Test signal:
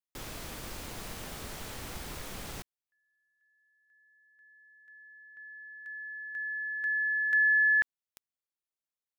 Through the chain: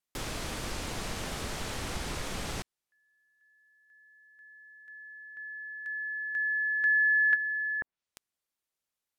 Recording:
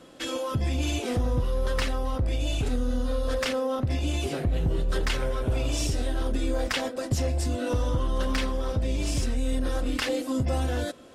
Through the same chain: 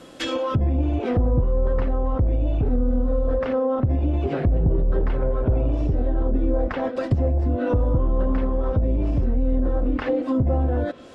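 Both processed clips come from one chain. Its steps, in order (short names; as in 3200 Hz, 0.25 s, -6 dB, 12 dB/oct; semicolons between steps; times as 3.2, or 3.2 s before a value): treble ducked by the level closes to 770 Hz, closed at -22.5 dBFS; gain +6 dB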